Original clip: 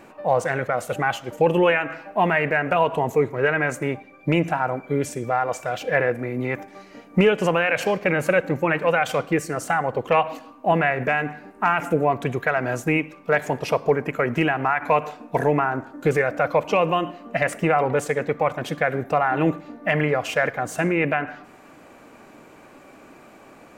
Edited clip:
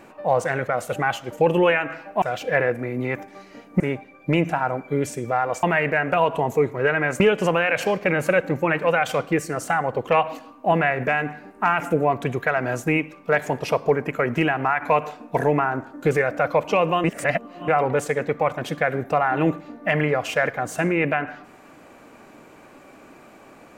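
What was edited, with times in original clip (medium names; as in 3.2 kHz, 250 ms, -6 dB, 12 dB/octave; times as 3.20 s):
2.22–3.79 s: swap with 5.62–7.20 s
17.04–17.68 s: reverse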